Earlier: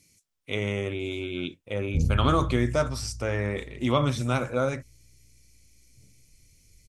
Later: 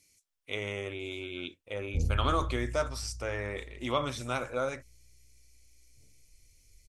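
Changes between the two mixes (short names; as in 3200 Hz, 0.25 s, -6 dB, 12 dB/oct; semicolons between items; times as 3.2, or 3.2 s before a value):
speech -3.5 dB; master: add bell 160 Hz -11.5 dB 1.7 oct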